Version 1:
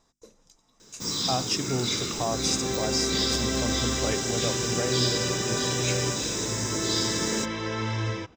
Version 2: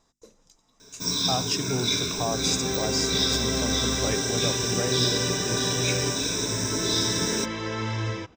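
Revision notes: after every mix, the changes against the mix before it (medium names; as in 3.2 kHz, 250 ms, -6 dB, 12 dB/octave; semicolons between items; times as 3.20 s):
first sound: add rippled EQ curve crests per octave 1.6, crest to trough 13 dB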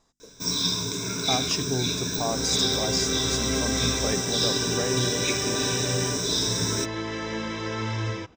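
first sound: entry -0.60 s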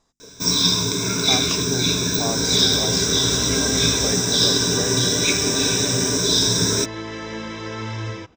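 first sound +7.5 dB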